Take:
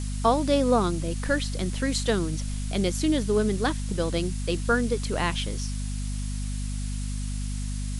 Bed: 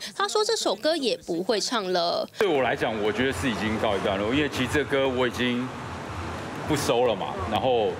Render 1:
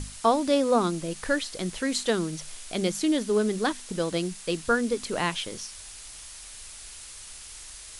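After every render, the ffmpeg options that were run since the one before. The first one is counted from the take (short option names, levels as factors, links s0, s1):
-af "bandreject=f=50:t=h:w=6,bandreject=f=100:t=h:w=6,bandreject=f=150:t=h:w=6,bandreject=f=200:t=h:w=6,bandreject=f=250:t=h:w=6"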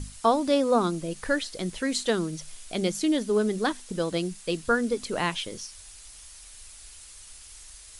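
-af "afftdn=nr=6:nf=-44"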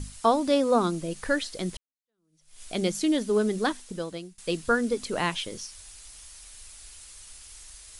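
-filter_complex "[0:a]asplit=3[s0][s1][s2];[s0]atrim=end=1.77,asetpts=PTS-STARTPTS,afade=t=out:st=1.766:d=0.004:c=hsin[s3];[s1]atrim=start=1.77:end=4.38,asetpts=PTS-STARTPTS,afade=t=in:d=0.85:c=exp,afade=t=out:st=1.9:d=0.71:silence=0.0749894[s4];[s2]atrim=start=4.38,asetpts=PTS-STARTPTS,afade=t=in:d=0.004:c=hsin:silence=0.0749894[s5];[s3][s4][s5]concat=n=3:v=0:a=1"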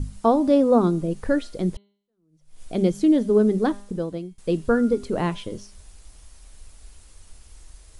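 -af "tiltshelf=f=970:g=9,bandreject=f=201.5:t=h:w=4,bandreject=f=403:t=h:w=4,bandreject=f=604.5:t=h:w=4,bandreject=f=806:t=h:w=4,bandreject=f=1007.5:t=h:w=4,bandreject=f=1209:t=h:w=4,bandreject=f=1410.5:t=h:w=4,bandreject=f=1612:t=h:w=4,bandreject=f=1813.5:t=h:w=4,bandreject=f=2015:t=h:w=4,bandreject=f=2216.5:t=h:w=4,bandreject=f=2418:t=h:w=4,bandreject=f=2619.5:t=h:w=4,bandreject=f=2821:t=h:w=4,bandreject=f=3022.5:t=h:w=4,bandreject=f=3224:t=h:w=4,bandreject=f=3425.5:t=h:w=4,bandreject=f=3627:t=h:w=4,bandreject=f=3828.5:t=h:w=4,bandreject=f=4030:t=h:w=4,bandreject=f=4231.5:t=h:w=4,bandreject=f=4433:t=h:w=4"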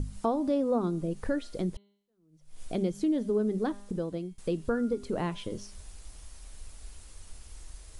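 -af "acompressor=threshold=0.0224:ratio=2"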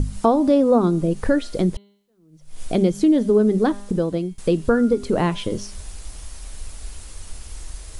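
-af "volume=3.76"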